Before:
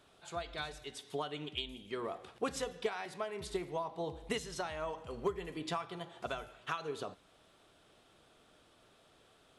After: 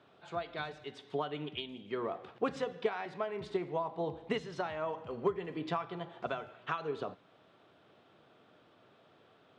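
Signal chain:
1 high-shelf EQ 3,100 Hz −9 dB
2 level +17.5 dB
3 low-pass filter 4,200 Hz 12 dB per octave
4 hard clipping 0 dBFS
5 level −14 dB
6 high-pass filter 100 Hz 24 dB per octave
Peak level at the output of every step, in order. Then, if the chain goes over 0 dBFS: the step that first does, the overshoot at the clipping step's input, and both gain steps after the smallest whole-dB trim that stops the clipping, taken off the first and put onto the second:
−23.5, −6.0, −6.0, −6.0, −20.0, −19.0 dBFS
no step passes full scale

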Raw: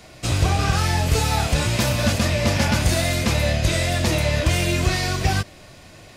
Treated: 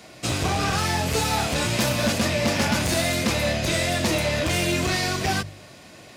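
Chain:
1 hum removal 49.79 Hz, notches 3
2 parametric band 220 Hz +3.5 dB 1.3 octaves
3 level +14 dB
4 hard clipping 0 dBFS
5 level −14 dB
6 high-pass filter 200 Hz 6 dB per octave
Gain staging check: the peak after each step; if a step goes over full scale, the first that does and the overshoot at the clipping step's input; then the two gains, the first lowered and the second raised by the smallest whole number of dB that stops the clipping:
−7.0, −6.0, +8.0, 0.0, −14.0, −10.5 dBFS
step 3, 8.0 dB
step 3 +6 dB, step 5 −6 dB

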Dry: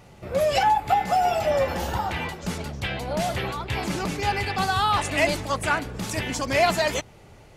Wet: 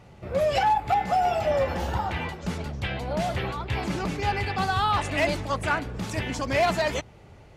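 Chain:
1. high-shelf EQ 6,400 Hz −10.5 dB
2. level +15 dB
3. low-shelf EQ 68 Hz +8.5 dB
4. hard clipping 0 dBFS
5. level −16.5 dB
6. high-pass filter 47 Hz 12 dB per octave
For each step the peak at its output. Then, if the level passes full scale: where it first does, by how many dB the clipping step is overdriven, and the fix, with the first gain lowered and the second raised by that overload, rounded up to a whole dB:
−10.0, +5.0, +5.5, 0.0, −16.5, −14.5 dBFS
step 2, 5.5 dB
step 2 +9 dB, step 5 −10.5 dB

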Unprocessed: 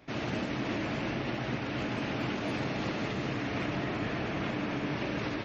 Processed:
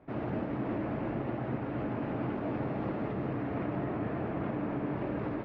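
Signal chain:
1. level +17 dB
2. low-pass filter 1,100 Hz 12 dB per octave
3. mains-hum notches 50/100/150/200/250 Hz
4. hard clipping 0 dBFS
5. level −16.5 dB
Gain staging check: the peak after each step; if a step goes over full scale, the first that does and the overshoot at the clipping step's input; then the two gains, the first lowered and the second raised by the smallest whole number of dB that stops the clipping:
−3.0, −4.0, −3.5, −3.5, −20.0 dBFS
no step passes full scale

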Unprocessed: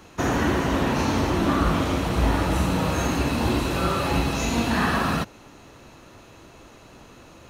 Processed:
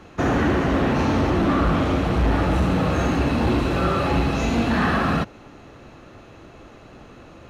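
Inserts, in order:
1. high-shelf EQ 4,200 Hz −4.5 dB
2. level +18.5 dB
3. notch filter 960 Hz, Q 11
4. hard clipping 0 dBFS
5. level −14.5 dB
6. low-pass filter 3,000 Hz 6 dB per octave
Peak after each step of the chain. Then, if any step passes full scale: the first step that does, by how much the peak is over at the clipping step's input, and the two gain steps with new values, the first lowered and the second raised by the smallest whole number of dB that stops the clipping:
−9.0, +9.5, +9.0, 0.0, −14.5, −14.5 dBFS
step 2, 9.0 dB
step 2 +9.5 dB, step 5 −5.5 dB

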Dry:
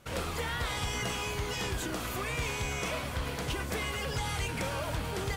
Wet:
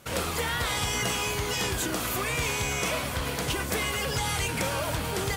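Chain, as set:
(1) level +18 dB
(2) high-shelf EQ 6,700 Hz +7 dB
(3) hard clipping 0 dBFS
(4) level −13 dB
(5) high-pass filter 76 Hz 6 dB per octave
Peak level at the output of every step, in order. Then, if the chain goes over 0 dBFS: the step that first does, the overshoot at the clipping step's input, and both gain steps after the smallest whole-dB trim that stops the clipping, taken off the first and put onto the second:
−7.0, −2.0, −2.0, −15.0, −14.5 dBFS
no step passes full scale

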